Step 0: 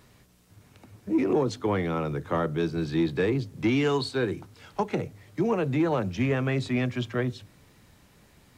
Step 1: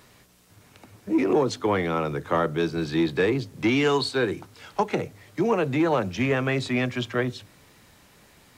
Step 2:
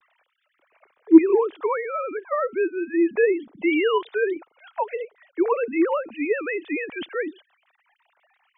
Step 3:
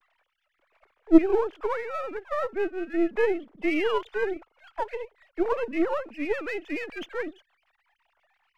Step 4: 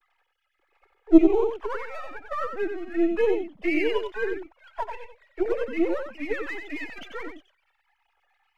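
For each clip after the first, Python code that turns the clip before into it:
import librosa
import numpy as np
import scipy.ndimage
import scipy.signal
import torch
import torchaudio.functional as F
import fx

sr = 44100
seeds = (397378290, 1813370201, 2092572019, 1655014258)

y1 = fx.low_shelf(x, sr, hz=280.0, db=-8.0)
y1 = F.gain(torch.from_numpy(y1), 5.5).numpy()
y2 = fx.sine_speech(y1, sr)
y2 = F.gain(torch.from_numpy(y2), 2.0).numpy()
y3 = np.where(y2 < 0.0, 10.0 ** (-7.0 / 20.0) * y2, y2)
y3 = F.gain(torch.from_numpy(y3), -2.0).numpy()
y4 = fx.env_flanger(y3, sr, rest_ms=2.4, full_db=-19.0)
y4 = y4 + 10.0 ** (-6.5 / 20.0) * np.pad(y4, (int(92 * sr / 1000.0), 0))[:len(y4)]
y4 = F.gain(torch.from_numpy(y4), 2.0).numpy()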